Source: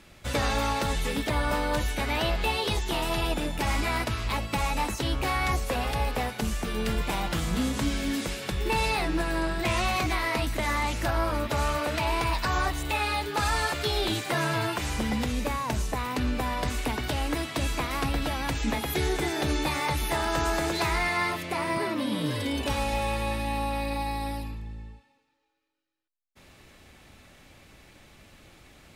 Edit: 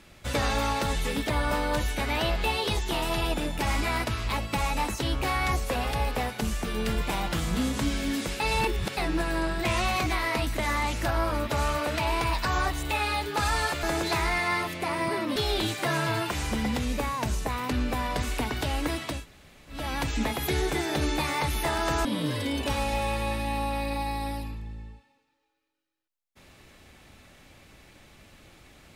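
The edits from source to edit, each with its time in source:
0:08.40–0:08.97: reverse
0:17.62–0:18.26: fill with room tone, crossfade 0.24 s
0:20.52–0:22.05: move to 0:13.83

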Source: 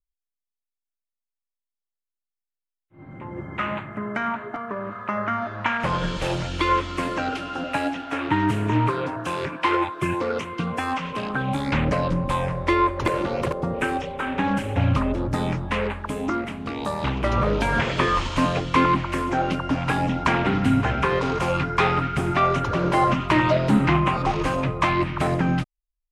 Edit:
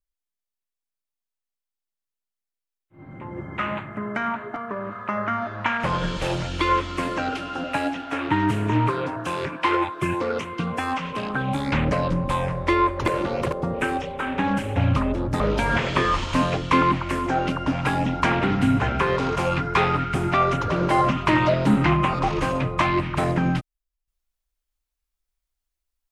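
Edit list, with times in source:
0:15.40–0:17.43: remove

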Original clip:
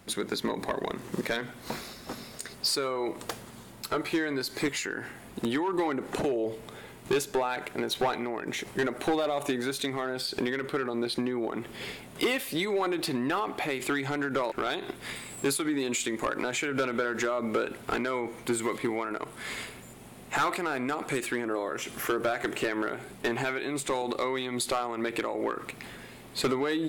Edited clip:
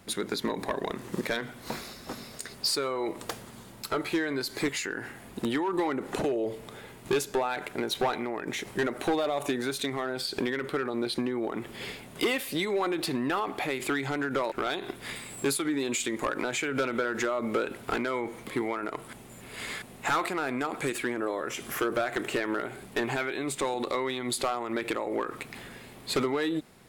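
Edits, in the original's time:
0:18.47–0:18.75: remove
0:19.41–0:20.10: reverse

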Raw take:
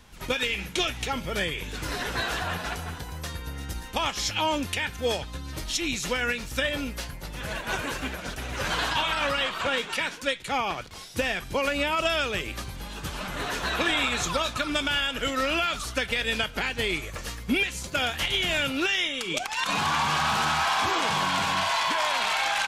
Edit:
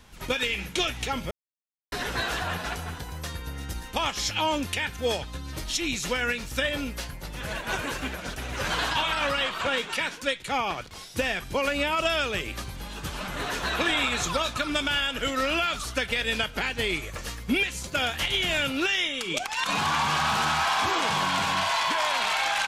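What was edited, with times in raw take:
0:01.31–0:01.92: silence

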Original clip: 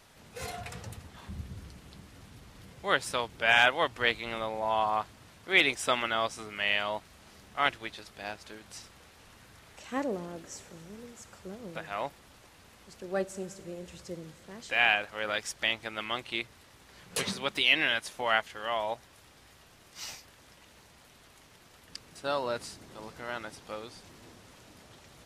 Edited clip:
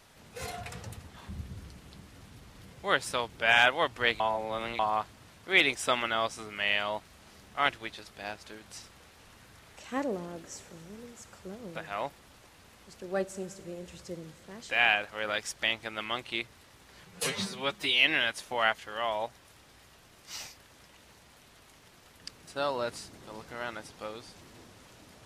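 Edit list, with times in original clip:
0:04.20–0:04.79: reverse
0:17.05–0:17.69: time-stretch 1.5×

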